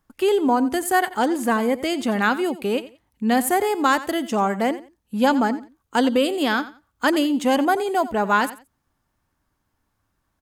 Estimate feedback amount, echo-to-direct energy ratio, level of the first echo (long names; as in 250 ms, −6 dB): 22%, −16.0 dB, −16.0 dB